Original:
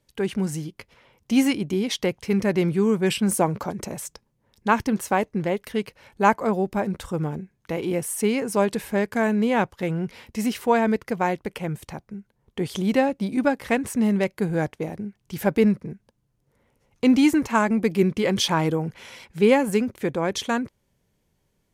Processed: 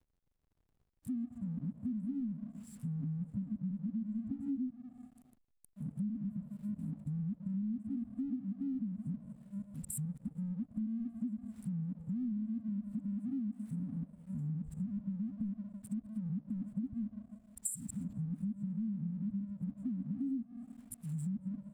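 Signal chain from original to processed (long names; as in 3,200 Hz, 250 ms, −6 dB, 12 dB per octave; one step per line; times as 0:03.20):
played backwards from end to start
in parallel at −10 dB: sine wavefolder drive 9 dB, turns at −3.5 dBFS
on the sum: convolution reverb RT60 1.4 s, pre-delay 87 ms, DRR 15 dB
treble cut that deepens with the level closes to 550 Hz, closed at −14.5 dBFS
dynamic equaliser 290 Hz, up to +4 dB, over −26 dBFS, Q 1.5
brick-wall band-stop 280–7,200 Hz
first-order pre-emphasis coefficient 0.9
slack as between gear wheels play −59 dBFS
downward compressor 8 to 1, threshold −42 dBFS, peak gain reduction 17.5 dB
level +7 dB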